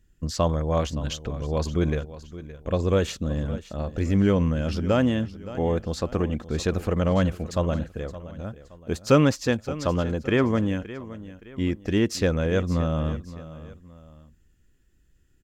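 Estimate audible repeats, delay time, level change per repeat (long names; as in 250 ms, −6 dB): 2, 569 ms, −8.0 dB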